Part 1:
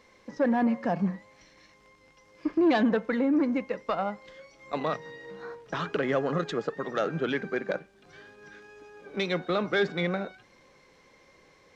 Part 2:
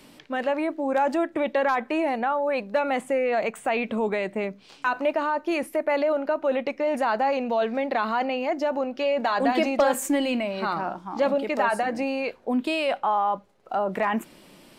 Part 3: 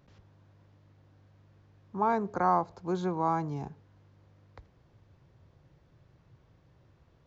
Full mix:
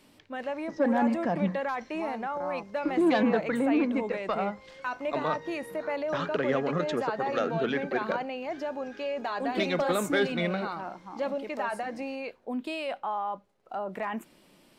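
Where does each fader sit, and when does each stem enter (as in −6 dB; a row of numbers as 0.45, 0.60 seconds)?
−1.0, −8.5, −12.5 decibels; 0.40, 0.00, 0.00 seconds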